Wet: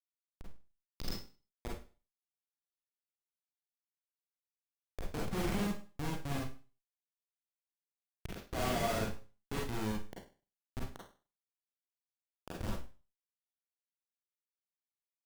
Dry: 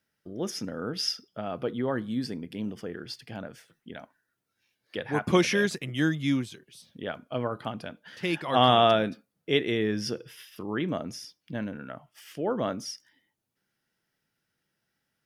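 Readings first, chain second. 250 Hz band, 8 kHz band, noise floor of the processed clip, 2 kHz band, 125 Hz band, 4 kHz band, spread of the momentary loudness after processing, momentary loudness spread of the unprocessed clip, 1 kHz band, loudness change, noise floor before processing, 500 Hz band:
-13.0 dB, -8.5 dB, under -85 dBFS, -13.5 dB, -9.0 dB, -16.5 dB, 18 LU, 21 LU, -15.0 dB, -11.0 dB, -81 dBFS, -15.0 dB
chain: Schmitt trigger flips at -22 dBFS; Schroeder reverb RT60 0.35 s, combs from 33 ms, DRR -3 dB; trim -7 dB

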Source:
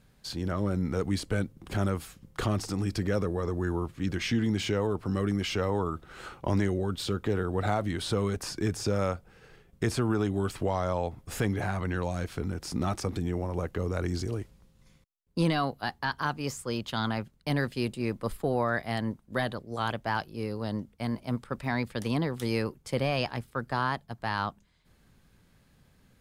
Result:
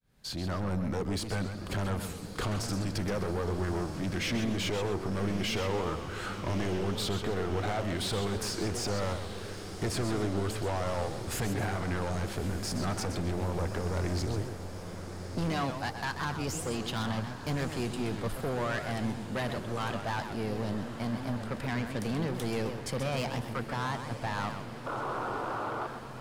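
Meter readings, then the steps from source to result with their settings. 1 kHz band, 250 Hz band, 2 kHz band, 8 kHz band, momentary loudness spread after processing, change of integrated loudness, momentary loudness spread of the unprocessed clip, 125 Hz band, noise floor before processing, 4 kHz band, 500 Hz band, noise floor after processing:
-1.5 dB, -3.0 dB, -2.0 dB, +2.5 dB, 5 LU, -2.5 dB, 6 LU, -2.0 dB, -63 dBFS, +0.5 dB, -2.5 dB, -41 dBFS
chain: fade-in on the opening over 0.51 s; painted sound noise, 24.86–25.87 s, 280–1500 Hz -38 dBFS; in parallel at +0.5 dB: compression, threshold -39 dBFS, peak gain reduction 16.5 dB; on the sum: saturation -28 dBFS, distortion -8 dB; on a send: echo that smears into a reverb 1213 ms, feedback 70%, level -11.5 dB; on the sum: modulated delay 129 ms, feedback 34%, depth 207 cents, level -8.5 dB

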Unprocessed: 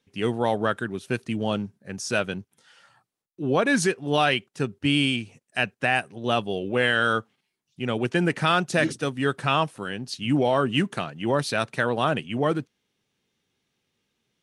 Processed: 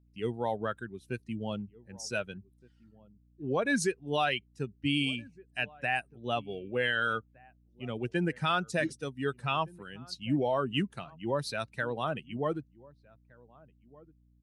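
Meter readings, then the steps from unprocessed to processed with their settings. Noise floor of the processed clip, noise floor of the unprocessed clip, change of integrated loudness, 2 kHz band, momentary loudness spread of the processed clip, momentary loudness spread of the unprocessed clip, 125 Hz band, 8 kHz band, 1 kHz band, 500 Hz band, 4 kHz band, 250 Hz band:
-65 dBFS, -80 dBFS, -8.0 dB, -7.5 dB, 12 LU, 9 LU, -8.0 dB, -7.5 dB, -8.0 dB, -8.0 dB, -8.0 dB, -8.5 dB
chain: expander on every frequency bin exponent 1.5; echo from a far wall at 260 m, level -23 dB; hum 60 Hz, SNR 30 dB; trim -5 dB

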